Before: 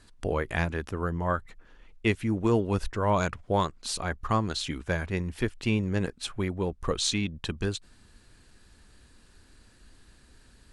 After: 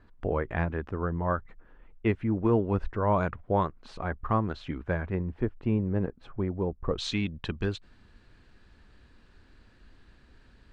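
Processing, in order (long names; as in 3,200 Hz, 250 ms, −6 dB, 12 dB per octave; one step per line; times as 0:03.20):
low-pass filter 1,600 Hz 12 dB per octave, from 0:05.15 1,000 Hz, from 0:06.98 3,200 Hz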